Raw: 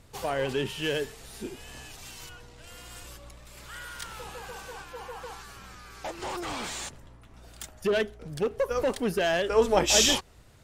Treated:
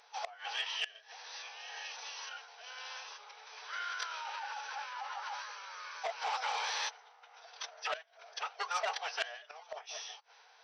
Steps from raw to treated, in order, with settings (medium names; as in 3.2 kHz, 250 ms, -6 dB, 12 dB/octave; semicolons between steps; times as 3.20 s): in parallel at -9.5 dB: decimation with a swept rate 10×, swing 160% 2 Hz; on the sum: brick-wall FIR band-pass 590–8400 Hz; formant-preserving pitch shift -5.5 st; inverted gate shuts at -22 dBFS, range -24 dB; transformer saturation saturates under 2.2 kHz; trim +1.5 dB